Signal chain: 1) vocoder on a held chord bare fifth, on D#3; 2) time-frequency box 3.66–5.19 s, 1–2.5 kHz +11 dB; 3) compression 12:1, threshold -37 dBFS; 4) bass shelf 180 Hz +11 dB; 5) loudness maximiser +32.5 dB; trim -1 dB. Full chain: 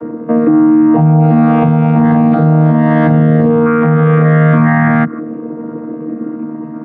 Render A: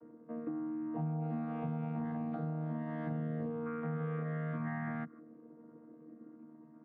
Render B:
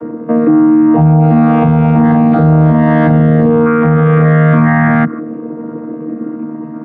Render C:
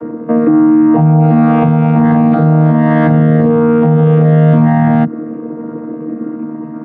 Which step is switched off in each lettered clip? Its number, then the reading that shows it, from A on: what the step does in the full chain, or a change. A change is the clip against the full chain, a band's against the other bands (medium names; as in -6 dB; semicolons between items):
5, crest factor change +3.5 dB; 3, mean gain reduction 6.5 dB; 2, 2 kHz band -5.5 dB